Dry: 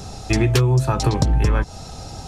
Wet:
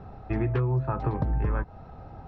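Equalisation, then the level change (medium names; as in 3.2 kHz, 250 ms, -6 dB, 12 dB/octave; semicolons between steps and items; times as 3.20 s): four-pole ladder low-pass 2.1 kHz, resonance 20%; -4.0 dB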